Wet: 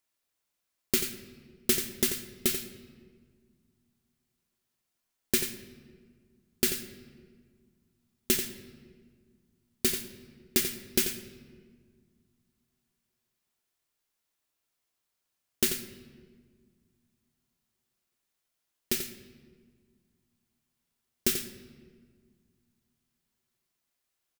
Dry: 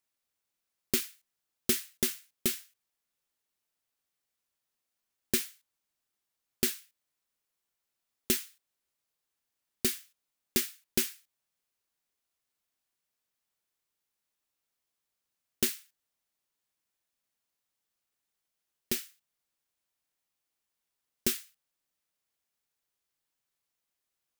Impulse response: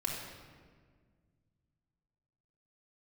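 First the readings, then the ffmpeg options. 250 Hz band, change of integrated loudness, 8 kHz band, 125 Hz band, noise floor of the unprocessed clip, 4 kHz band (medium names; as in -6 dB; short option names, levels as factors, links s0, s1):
+3.0 dB, +2.5 dB, +3.0 dB, +3.0 dB, under -85 dBFS, +3.0 dB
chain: -filter_complex "[0:a]aecho=1:1:88:0.355,asplit=2[s0][s1];[1:a]atrim=start_sample=2205[s2];[s1][s2]afir=irnorm=-1:irlink=0,volume=0.316[s3];[s0][s3]amix=inputs=2:normalize=0"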